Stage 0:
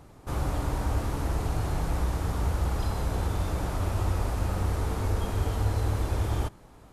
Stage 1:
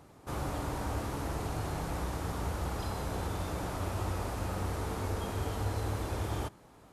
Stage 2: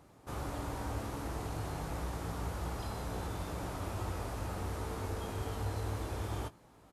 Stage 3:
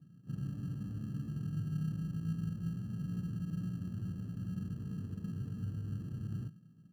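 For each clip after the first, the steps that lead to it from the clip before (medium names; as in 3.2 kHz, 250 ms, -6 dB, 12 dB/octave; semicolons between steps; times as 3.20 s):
high-pass 130 Hz 6 dB/octave; trim -2.5 dB
doubling 18 ms -10 dB; trim -4 dB
Butterworth band-pass 160 Hz, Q 2.1; in parallel at -11 dB: sample-and-hold 30×; on the sum: trim +8.5 dB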